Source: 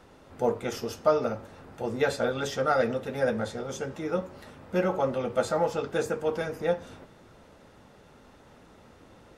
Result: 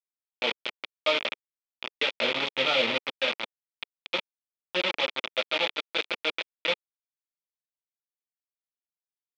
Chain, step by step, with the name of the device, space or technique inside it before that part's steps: 2.21–3.10 s: tilt EQ -3.5 dB/octave; hand-held game console (bit crusher 4-bit; cabinet simulation 440–4200 Hz, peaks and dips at 450 Hz -7 dB, 740 Hz -8 dB, 1.1 kHz -5 dB, 1.6 kHz -8 dB, 2.4 kHz +8 dB, 3.4 kHz +9 dB)

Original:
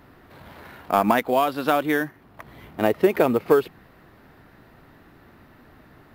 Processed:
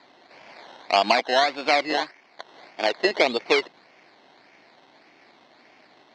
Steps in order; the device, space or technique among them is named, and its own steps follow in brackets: 1.93–3.05 s: tilt EQ +2.5 dB/octave; circuit-bent sampling toy (decimation with a swept rate 15×, swing 60% 1.7 Hz; cabinet simulation 410–5000 Hz, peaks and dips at 450 Hz -3 dB, 710 Hz +3 dB, 1.3 kHz -6 dB, 2.2 kHz +7 dB, 4.3 kHz +7 dB)

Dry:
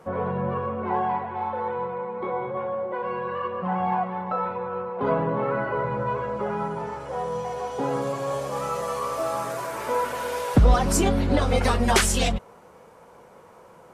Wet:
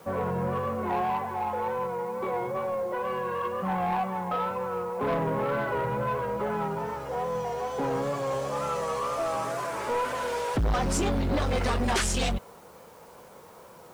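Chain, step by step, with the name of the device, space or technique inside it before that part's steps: compact cassette (saturation -22 dBFS, distortion -8 dB; low-pass 9.5 kHz 12 dB/octave; wow and flutter; white noise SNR 31 dB)

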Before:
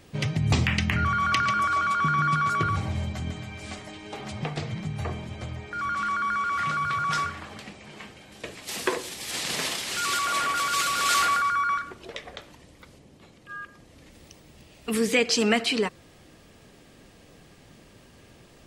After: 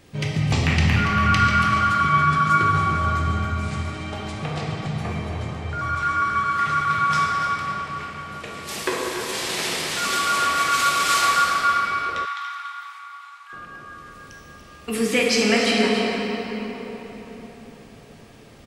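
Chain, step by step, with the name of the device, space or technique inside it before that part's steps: cave (delay 285 ms -10.5 dB; reverberation RT60 4.5 s, pre-delay 12 ms, DRR -3 dB); 12.25–13.53 s: steep high-pass 840 Hz 72 dB/octave

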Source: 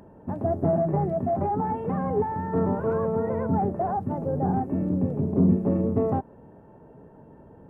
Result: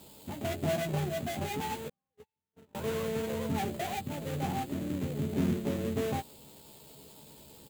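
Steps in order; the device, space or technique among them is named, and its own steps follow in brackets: budget class-D amplifier (dead-time distortion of 0.25 ms; zero-crossing glitches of -28 dBFS); 1.88–2.75 s: gate -18 dBFS, range -55 dB; doubling 14 ms -5.5 dB; trim -8.5 dB

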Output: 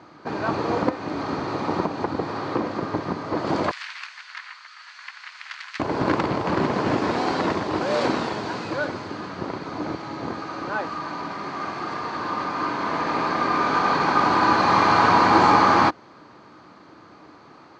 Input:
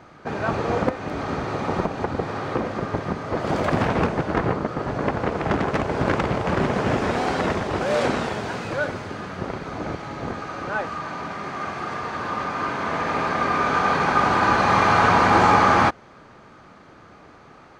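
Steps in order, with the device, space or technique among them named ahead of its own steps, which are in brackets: car door speaker (cabinet simulation 100–7800 Hz, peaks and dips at 310 Hz +8 dB, 1 kHz +6 dB, 4.4 kHz +8 dB); 3.71–5.80 s: inverse Chebyshev high-pass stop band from 390 Hz, stop band 70 dB; trim -2.5 dB

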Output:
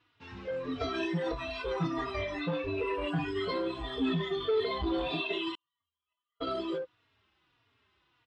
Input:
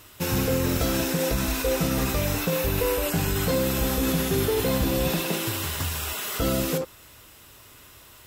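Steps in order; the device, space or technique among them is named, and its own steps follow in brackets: spectral noise reduction 19 dB; barber-pole flanger into a guitar amplifier (endless flanger 3.6 ms -1.6 Hz; saturation -23.5 dBFS, distortion -18 dB; cabinet simulation 95–3800 Hz, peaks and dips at 150 Hz -4 dB, 220 Hz -5 dB, 550 Hz -10 dB); 5.55–6.47 s: gate -36 dBFS, range -49 dB; trim +4 dB

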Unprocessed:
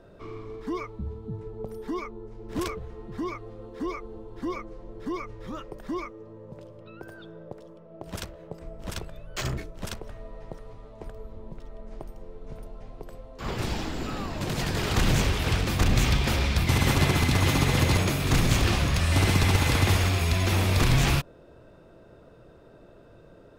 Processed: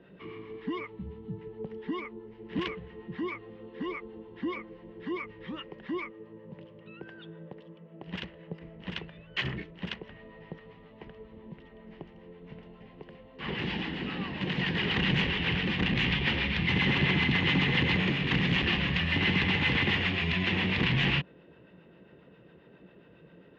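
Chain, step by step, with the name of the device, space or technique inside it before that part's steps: guitar amplifier with harmonic tremolo (harmonic tremolo 7.4 Hz, depth 50%, crossover 670 Hz; saturation -18 dBFS, distortion -17 dB; cabinet simulation 98–3600 Hz, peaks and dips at 100 Hz -9 dB, 180 Hz +8 dB, 640 Hz -9 dB, 1.3 kHz -6 dB, 1.9 kHz +9 dB, 2.9 kHz +10 dB)

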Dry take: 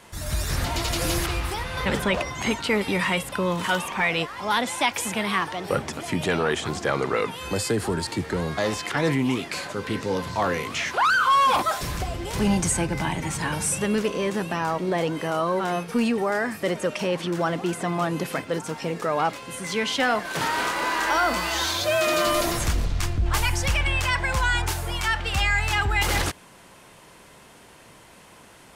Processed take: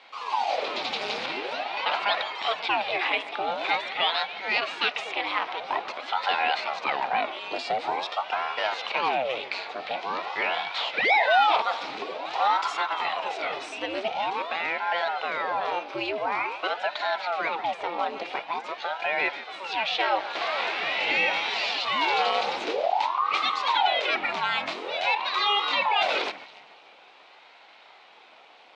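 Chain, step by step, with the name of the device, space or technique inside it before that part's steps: echo whose repeats swap between lows and highs 143 ms, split 2.4 kHz, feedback 53%, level -13.5 dB; voice changer toy (ring modulator with a swept carrier 660 Hz, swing 85%, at 0.47 Hz; cabinet simulation 560–4200 Hz, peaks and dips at 770 Hz +5 dB, 1.2 kHz -3 dB, 1.7 kHz -6 dB, 2.4 kHz +4 dB, 3.9 kHz +4 dB); trim +1.5 dB

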